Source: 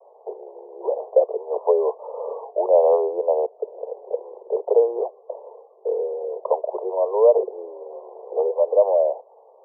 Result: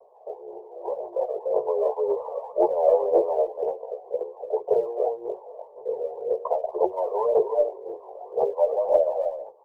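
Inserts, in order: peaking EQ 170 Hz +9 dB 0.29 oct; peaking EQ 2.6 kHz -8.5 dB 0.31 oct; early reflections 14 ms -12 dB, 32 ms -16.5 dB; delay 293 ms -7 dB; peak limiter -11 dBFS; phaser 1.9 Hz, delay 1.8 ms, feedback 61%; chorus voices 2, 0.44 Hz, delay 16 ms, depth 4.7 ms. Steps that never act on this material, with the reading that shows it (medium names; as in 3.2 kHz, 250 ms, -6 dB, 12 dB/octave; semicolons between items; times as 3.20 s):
peaking EQ 170 Hz: input has nothing below 340 Hz; peaking EQ 2.6 kHz: input has nothing above 1.1 kHz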